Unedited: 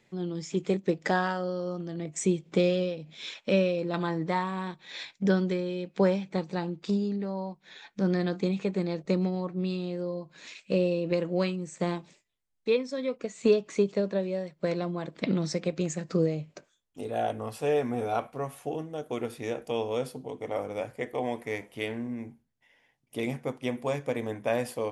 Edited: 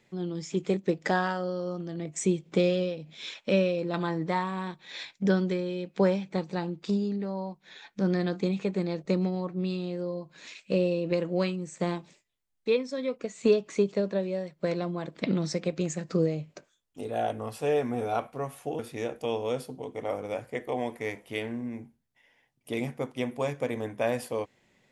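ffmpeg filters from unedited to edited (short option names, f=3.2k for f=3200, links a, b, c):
-filter_complex "[0:a]asplit=2[a][b];[a]atrim=end=18.792[c];[b]atrim=start=19.248[d];[c][d]acrossfade=d=0.004:c1=hsin:c2=hsin"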